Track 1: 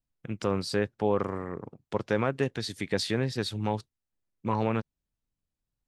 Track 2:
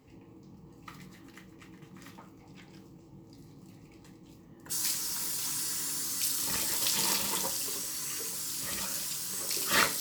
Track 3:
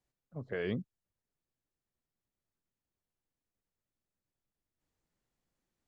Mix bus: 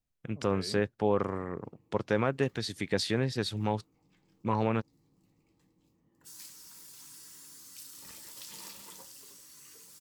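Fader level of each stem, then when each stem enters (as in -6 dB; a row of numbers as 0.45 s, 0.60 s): -1.0 dB, -17.0 dB, -10.0 dB; 0.00 s, 1.55 s, 0.00 s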